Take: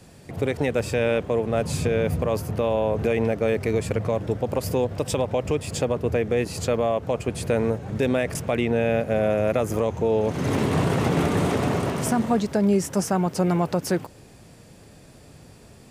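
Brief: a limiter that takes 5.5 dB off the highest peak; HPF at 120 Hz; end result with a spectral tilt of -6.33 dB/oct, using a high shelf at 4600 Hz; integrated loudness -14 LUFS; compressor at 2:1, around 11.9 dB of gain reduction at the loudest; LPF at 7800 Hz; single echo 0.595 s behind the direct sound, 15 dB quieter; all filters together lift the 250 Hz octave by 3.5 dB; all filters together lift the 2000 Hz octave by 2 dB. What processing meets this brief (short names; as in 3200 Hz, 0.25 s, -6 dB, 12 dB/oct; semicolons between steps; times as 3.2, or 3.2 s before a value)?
HPF 120 Hz; LPF 7800 Hz; bell 250 Hz +5 dB; bell 2000 Hz +3.5 dB; high shelf 4600 Hz -5 dB; compressor 2:1, threshold -36 dBFS; limiter -22.5 dBFS; echo 0.595 s -15 dB; gain +19.5 dB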